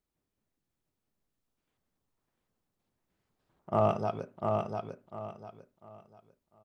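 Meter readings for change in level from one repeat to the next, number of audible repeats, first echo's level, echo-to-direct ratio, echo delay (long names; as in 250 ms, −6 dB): −11.0 dB, 3, −4.0 dB, −3.5 dB, 698 ms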